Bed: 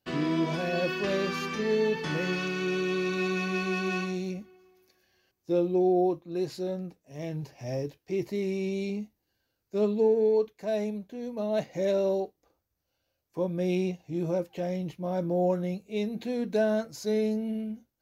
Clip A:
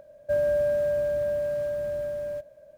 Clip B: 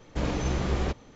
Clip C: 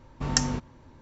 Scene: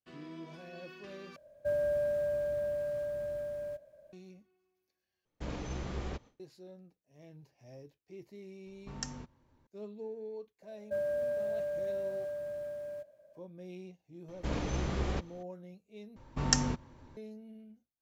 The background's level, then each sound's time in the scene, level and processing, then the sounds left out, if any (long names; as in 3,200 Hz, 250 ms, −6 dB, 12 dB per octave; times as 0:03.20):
bed −19 dB
0:01.36: overwrite with A −7 dB
0:05.25: overwrite with B −11 dB + noise gate with hold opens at −40 dBFS, closes at −48 dBFS
0:08.66: mix in C −16 dB
0:10.62: mix in A −9 dB + high-pass filter 160 Hz 6 dB per octave
0:14.28: mix in B −6 dB
0:16.16: overwrite with C −3 dB